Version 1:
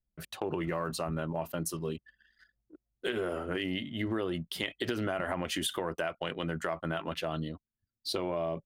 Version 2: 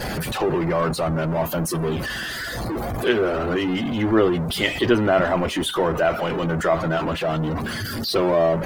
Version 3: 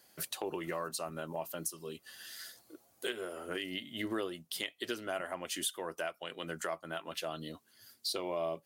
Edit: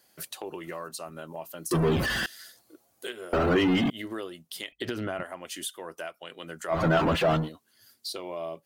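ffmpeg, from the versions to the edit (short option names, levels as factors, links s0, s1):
-filter_complex "[1:a]asplit=3[s0][s1][s2];[2:a]asplit=5[s3][s4][s5][s6][s7];[s3]atrim=end=1.712[s8];[s0]atrim=start=1.708:end=2.262[s9];[s4]atrim=start=2.258:end=3.332[s10];[s1]atrim=start=3.328:end=3.902[s11];[s5]atrim=start=3.898:end=4.722[s12];[0:a]atrim=start=4.718:end=5.232[s13];[s6]atrim=start=5.228:end=6.83[s14];[s2]atrim=start=6.67:end=7.5[s15];[s7]atrim=start=7.34[s16];[s8][s9]acrossfade=d=0.004:c1=hsin:c2=hsin[s17];[s17][s10]acrossfade=d=0.004:c1=hsin:c2=hsin[s18];[s18][s11]acrossfade=d=0.004:c1=hsin:c2=hsin[s19];[s19][s12]acrossfade=d=0.004:c1=hsin:c2=hsin[s20];[s20][s13]acrossfade=d=0.004:c1=hsin:c2=hsin[s21];[s21][s14]acrossfade=d=0.004:c1=hsin:c2=hsin[s22];[s22][s15]acrossfade=d=0.16:c1=tri:c2=tri[s23];[s23][s16]acrossfade=d=0.16:c1=tri:c2=tri"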